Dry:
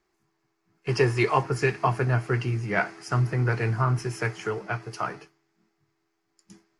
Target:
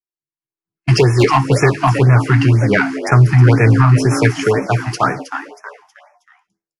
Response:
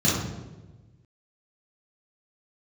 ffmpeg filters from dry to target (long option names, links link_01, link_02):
-filter_complex "[0:a]agate=range=-36dB:threshold=-39dB:ratio=16:detection=peak,equalizer=frequency=140:width_type=o:width=0.39:gain=4.5,alimiter=limit=-14dB:level=0:latency=1:release=298,dynaudnorm=framelen=220:gausssize=5:maxgain=15.5dB,asplit=2[link_01][link_02];[link_02]asplit=4[link_03][link_04][link_05][link_06];[link_03]adelay=318,afreqshift=150,volume=-11dB[link_07];[link_04]adelay=636,afreqshift=300,volume=-19.6dB[link_08];[link_05]adelay=954,afreqshift=450,volume=-28.3dB[link_09];[link_06]adelay=1272,afreqshift=600,volume=-36.9dB[link_10];[link_07][link_08][link_09][link_10]amix=inputs=4:normalize=0[link_11];[link_01][link_11]amix=inputs=2:normalize=0,acontrast=22,asettb=1/sr,asplit=3[link_12][link_13][link_14];[link_12]atrim=end=0.964[link_15];[link_13]atrim=start=0.96:end=2.16,asetpts=PTS-STARTPTS,afade=type=in:duration=0.004:curve=qsin,afade=type=out:start_time=1.196:duration=0.004:curve=qsin,asoftclip=type=hard:threshold=-3.5dB[link_16];[link_14]atrim=start=2.156[link_17];[link_15][link_16]acrossfade=duration=0.004:curve1=hsin:curve2=qsin[link_18];[link_18][link_17]acrossfade=duration=0.004:curve1=qsin:curve2=hsin,afftfilt=real='re*(1-between(b*sr/1024,430*pow(3800/430,0.5+0.5*sin(2*PI*2*pts/sr))/1.41,430*pow(3800/430,0.5+0.5*sin(2*PI*2*pts/sr))*1.41))':imag='im*(1-between(b*sr/1024,430*pow(3800/430,0.5+0.5*sin(2*PI*2*pts/sr))/1.41,430*pow(3800/430,0.5+0.5*sin(2*PI*2*pts/sr))*1.41))':win_size=1024:overlap=0.75,volume=-1.5dB"